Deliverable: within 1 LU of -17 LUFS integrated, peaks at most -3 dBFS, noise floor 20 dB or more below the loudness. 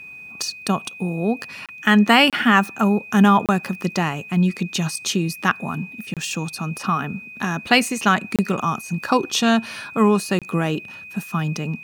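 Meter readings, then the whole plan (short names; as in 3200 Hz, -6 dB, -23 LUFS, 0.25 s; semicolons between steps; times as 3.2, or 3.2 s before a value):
dropouts 6; longest dropout 27 ms; steady tone 2500 Hz; tone level -36 dBFS; loudness -20.5 LUFS; peak -1.5 dBFS; loudness target -17.0 LUFS
-> interpolate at 1.66/2.3/3.46/6.14/8.36/10.39, 27 ms; notch 2500 Hz, Q 30; gain +3.5 dB; limiter -3 dBFS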